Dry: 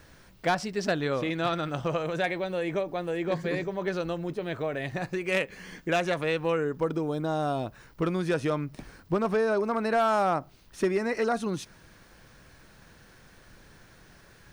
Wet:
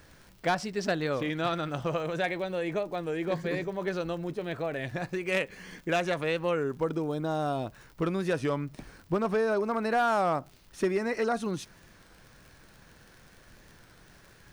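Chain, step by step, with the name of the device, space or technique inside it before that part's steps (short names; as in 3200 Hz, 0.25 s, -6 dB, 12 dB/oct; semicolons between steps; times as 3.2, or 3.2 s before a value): warped LP (record warp 33 1/3 rpm, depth 100 cents; crackle 60/s -41 dBFS; pink noise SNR 42 dB); gain -1.5 dB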